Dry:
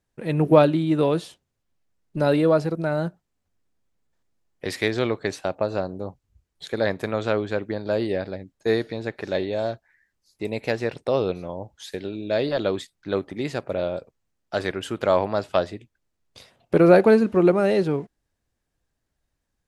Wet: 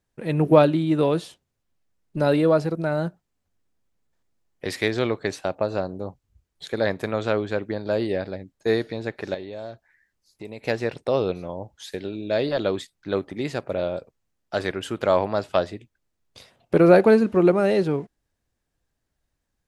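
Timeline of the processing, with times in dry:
9.34–10.65 compressor 2:1, threshold -39 dBFS

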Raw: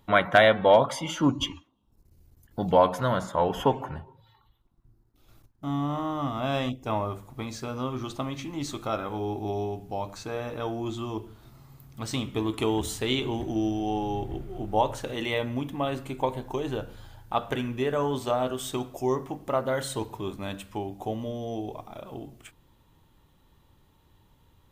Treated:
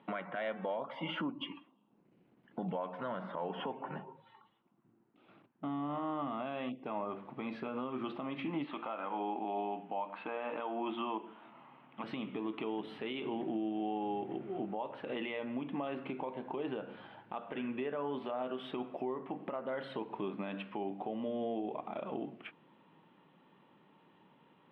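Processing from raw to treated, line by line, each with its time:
8.64–12.04 speaker cabinet 280–3400 Hz, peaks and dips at 400 Hz -8 dB, 940 Hz +6 dB, 3000 Hz +5 dB
whole clip: compressor 16:1, threshold -34 dBFS; elliptic band-pass 180–2800 Hz, stop band 40 dB; limiter -31 dBFS; gain +3 dB

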